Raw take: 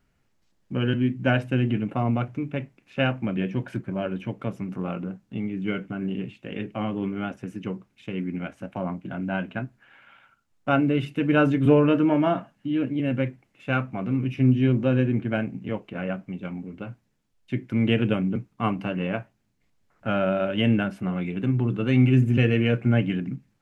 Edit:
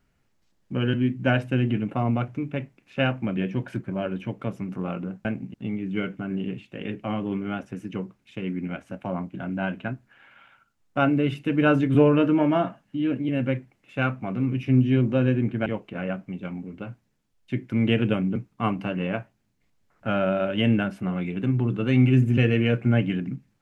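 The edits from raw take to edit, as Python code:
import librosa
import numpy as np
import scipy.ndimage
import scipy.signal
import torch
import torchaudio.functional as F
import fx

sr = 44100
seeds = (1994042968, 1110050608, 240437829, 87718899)

y = fx.edit(x, sr, fx.move(start_s=15.37, length_s=0.29, to_s=5.25), tone=tone)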